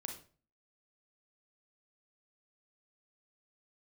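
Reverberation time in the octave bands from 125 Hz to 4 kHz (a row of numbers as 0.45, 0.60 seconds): 0.55, 0.45, 0.45, 0.35, 0.35, 0.30 seconds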